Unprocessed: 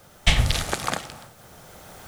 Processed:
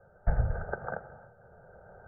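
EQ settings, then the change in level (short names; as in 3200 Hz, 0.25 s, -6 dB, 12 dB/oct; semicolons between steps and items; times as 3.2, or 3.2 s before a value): rippled Chebyshev low-pass 1600 Hz, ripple 6 dB; fixed phaser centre 1100 Hz, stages 6; 0.0 dB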